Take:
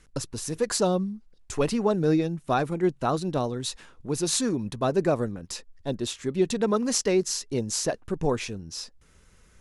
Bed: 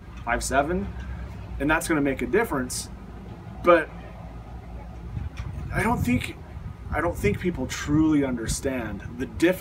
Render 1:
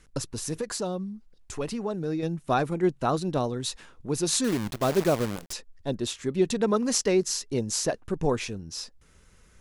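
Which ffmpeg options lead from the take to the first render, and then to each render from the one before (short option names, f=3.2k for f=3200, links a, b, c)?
-filter_complex "[0:a]asettb=1/sr,asplit=3[a][b][c];[a]atrim=end=0.614[d];[b]atrim=start=0.61:end=2.23,asetpts=PTS-STARTPTS,afade=t=in:d=0.004:c=qsin,afade=t=out:st=1.616:d=0.004:c=qsin,acompressor=threshold=-39dB:ratio=1.5:attack=3.2:release=140:knee=1:detection=peak[e];[c]atrim=start=2.226[f];[d][e]acrossfade=d=0.004:c1=hsin:c2=qsin[g];[g][f]acrossfade=d=0.004:c1=qsin:c2=hsin,asettb=1/sr,asplit=3[h][i][j];[h]atrim=end=4.444[k];[i]atrim=start=4.44:end=5.53,asetpts=PTS-STARTPTS,afade=t=in:d=0.004:c=qsin,afade=t=out:st=1.086:d=0.004:c=qsin,acrusher=bits=6:dc=4:mix=0:aa=0.000001[l];[j]atrim=start=5.526[m];[k][l]acrossfade=d=0.004:c1=hsin:c2=qsin[n];[n][m]acrossfade=d=0.004:c1=qsin:c2=hsin"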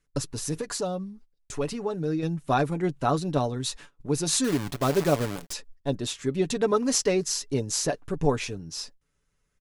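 -af "agate=range=-18dB:threshold=-46dB:ratio=16:detection=peak,aecho=1:1:7:0.47"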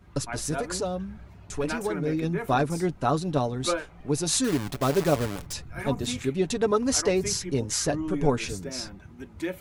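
-filter_complex "[1:a]volume=-11dB[a];[0:a][a]amix=inputs=2:normalize=0"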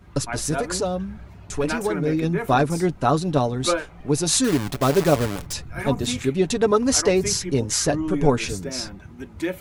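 -af "volume=5dB"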